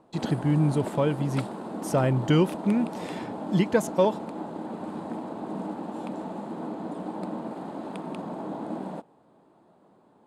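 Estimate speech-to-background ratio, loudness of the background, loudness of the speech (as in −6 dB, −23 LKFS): 10.0 dB, −35.5 LKFS, −25.5 LKFS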